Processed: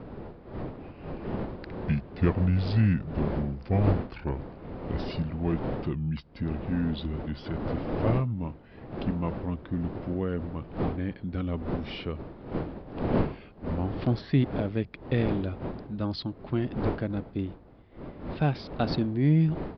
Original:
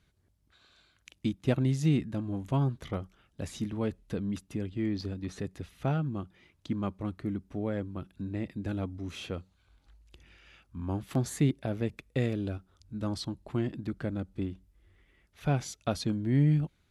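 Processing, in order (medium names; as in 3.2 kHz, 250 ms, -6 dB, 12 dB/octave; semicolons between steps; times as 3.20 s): gliding tape speed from 64% -> 107%; wind noise 400 Hz -38 dBFS; resampled via 11.025 kHz; trim +2.5 dB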